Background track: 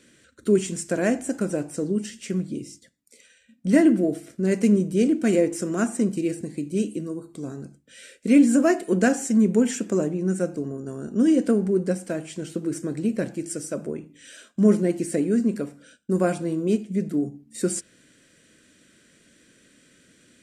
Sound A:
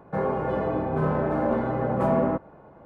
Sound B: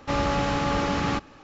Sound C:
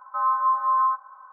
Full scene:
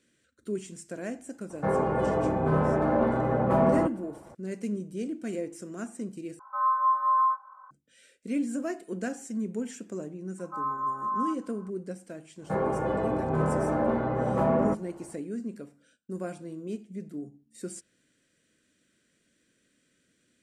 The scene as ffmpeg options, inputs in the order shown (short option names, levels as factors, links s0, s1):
-filter_complex "[1:a]asplit=2[s0][s1];[3:a]asplit=2[s2][s3];[0:a]volume=0.211[s4];[s2]asplit=2[s5][s6];[s6]adelay=19,volume=0.531[s7];[s5][s7]amix=inputs=2:normalize=0[s8];[s4]asplit=2[s9][s10];[s9]atrim=end=6.394[s11];[s8]atrim=end=1.32,asetpts=PTS-STARTPTS,volume=0.531[s12];[s10]atrim=start=7.706[s13];[s0]atrim=end=2.85,asetpts=PTS-STARTPTS,afade=t=in:d=0.004:c=hsin,afade=t=out:st=2.846:d=0.004:c=hsin,adelay=1500[s14];[s3]atrim=end=1.32,asetpts=PTS-STARTPTS,volume=0.355,afade=t=in:d=0.004:c=hsin,afade=t=out:st=1.316:d=0.004:c=hsin,adelay=10380[s15];[s1]atrim=end=2.85,asetpts=PTS-STARTPTS,volume=0.794,afade=t=in:d=0.1,afade=t=out:st=2.75:d=0.1,adelay=12370[s16];[s11][s12]acrossfade=d=0.004:c1=hsin:c2=hsin[s17];[s17][s13]acrossfade=d=0.004:c1=hsin:c2=hsin[s18];[s18][s14][s15][s16]amix=inputs=4:normalize=0"